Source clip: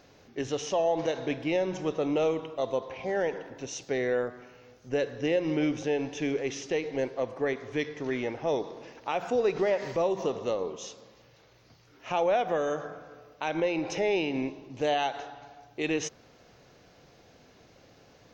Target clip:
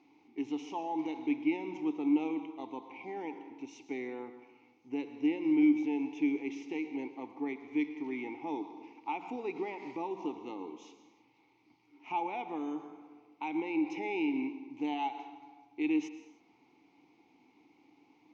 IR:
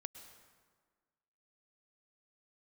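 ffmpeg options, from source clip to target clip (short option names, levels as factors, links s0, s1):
-filter_complex "[0:a]asplit=3[s0][s1][s2];[s0]bandpass=f=300:t=q:w=8,volume=1[s3];[s1]bandpass=f=870:t=q:w=8,volume=0.501[s4];[s2]bandpass=f=2240:t=q:w=8,volume=0.355[s5];[s3][s4][s5]amix=inputs=3:normalize=0,asplit=2[s6][s7];[s7]aemphasis=mode=production:type=bsi[s8];[1:a]atrim=start_sample=2205,afade=t=out:st=0.38:d=0.01,atrim=end_sample=17199[s9];[s8][s9]afir=irnorm=-1:irlink=0,volume=2[s10];[s6][s10]amix=inputs=2:normalize=0"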